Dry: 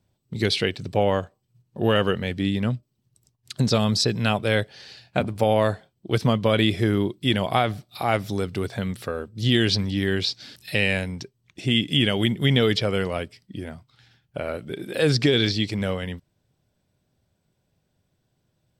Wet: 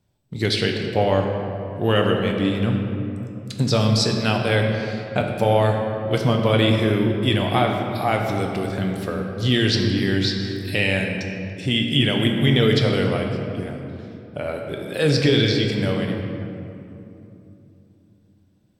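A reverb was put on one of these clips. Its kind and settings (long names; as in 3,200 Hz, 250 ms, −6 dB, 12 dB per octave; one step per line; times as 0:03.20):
rectangular room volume 120 cubic metres, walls hard, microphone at 0.34 metres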